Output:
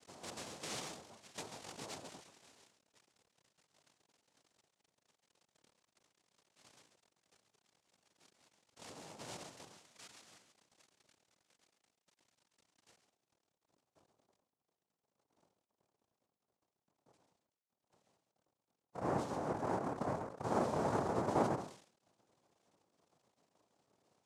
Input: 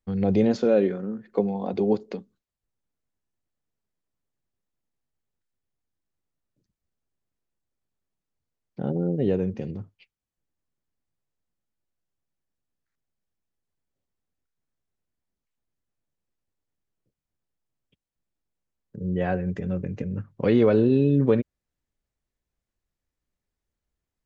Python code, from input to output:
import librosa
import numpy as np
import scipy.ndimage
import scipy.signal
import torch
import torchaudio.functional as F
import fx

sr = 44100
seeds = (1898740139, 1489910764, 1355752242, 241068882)

y = x + 0.5 * 10.0 ** (-24.5 / 20.0) * np.diff(np.sign(x), prepend=np.sign(x[:1]))
y = fx.hum_notches(y, sr, base_hz=50, count=5)
y = fx.dereverb_blind(y, sr, rt60_s=0.67)
y = y + 10.0 ** (-8.5 / 20.0) * np.pad(y, (int(136 * sr / 1000.0), 0))[:len(y)]
y = np.clip(10.0 ** (26.5 / 20.0) * y, -1.0, 1.0) / 10.0 ** (26.5 / 20.0)
y = fx.filter_sweep_bandpass(y, sr, from_hz=1500.0, to_hz=230.0, start_s=12.22, end_s=14.67, q=3.4)
y = fx.sample_hold(y, sr, seeds[0], rate_hz=4300.0, jitter_pct=0)
y = fx.high_shelf(y, sr, hz=2200.0, db=fx.steps((0.0, -11.0), (9.38, -2.5)))
y = fx.noise_vocoder(y, sr, seeds[1], bands=2)
y = fx.sustainer(y, sr, db_per_s=110.0)